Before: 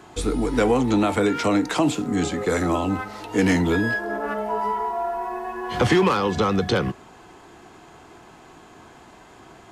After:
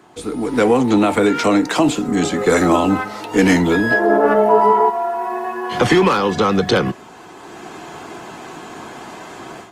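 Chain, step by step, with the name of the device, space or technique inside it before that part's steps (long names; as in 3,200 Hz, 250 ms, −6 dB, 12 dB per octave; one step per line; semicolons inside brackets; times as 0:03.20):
0:03.91–0:04.90: parametric band 420 Hz +11 dB 2.7 octaves
video call (high-pass filter 140 Hz 12 dB per octave; automatic gain control gain up to 14.5 dB; level −1 dB; Opus 24 kbit/s 48,000 Hz)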